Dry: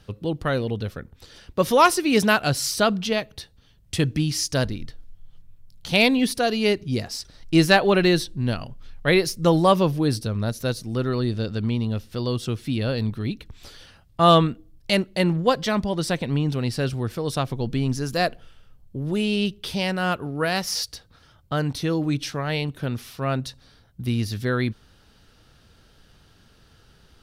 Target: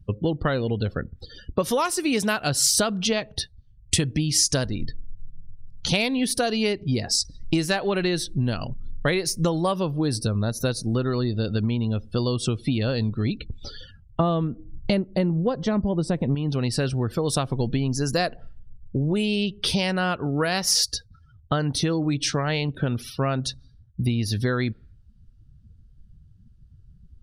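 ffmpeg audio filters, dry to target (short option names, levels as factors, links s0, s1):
-filter_complex "[0:a]asettb=1/sr,asplit=3[s0][s1][s2];[s0]atrim=end=14.204[s3];[s1]atrim=start=14.2:end=16.35,asetpts=PTS-STARTPTS,afade=t=in:d=0.004:c=qsin,afade=t=out:st=2.146:d=0.004:c=qsin,tiltshelf=f=930:g=8[s4];[s2]atrim=start=16.346[s5];[s3][s4]acrossfade=d=0.004:c1=hsin:c2=qsin[s6];[s6][s5]acrossfade=d=0.004:c1=qsin:c2=hsin,afftdn=nr=36:nf=-44,acompressor=threshold=0.0398:ratio=16,equalizer=f=8100:t=o:w=0.9:g=7.5,volume=2.66"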